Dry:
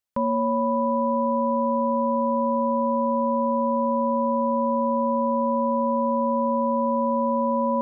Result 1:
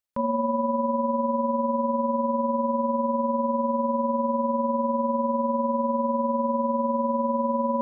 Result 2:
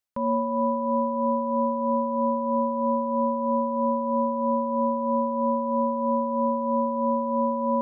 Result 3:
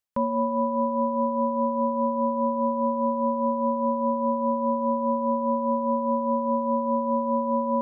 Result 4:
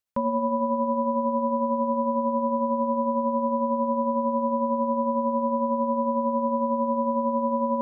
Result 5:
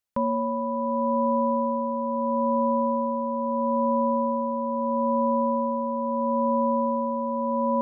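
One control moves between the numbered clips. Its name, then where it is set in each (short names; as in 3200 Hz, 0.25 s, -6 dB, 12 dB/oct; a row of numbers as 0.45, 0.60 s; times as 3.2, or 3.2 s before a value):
tremolo, rate: 20, 3.1, 4.9, 11, 0.76 Hz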